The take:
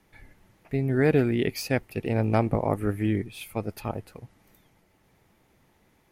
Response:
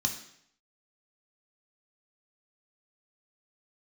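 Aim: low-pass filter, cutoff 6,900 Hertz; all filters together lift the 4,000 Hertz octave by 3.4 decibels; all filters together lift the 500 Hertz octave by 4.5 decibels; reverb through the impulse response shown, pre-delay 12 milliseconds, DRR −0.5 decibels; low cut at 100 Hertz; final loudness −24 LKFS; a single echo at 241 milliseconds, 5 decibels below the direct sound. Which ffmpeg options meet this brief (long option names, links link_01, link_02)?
-filter_complex "[0:a]highpass=100,lowpass=6900,equalizer=frequency=500:width_type=o:gain=5.5,equalizer=frequency=4000:width_type=o:gain=5,aecho=1:1:241:0.562,asplit=2[link_01][link_02];[1:a]atrim=start_sample=2205,adelay=12[link_03];[link_02][link_03]afir=irnorm=-1:irlink=0,volume=-4.5dB[link_04];[link_01][link_04]amix=inputs=2:normalize=0,volume=-5dB"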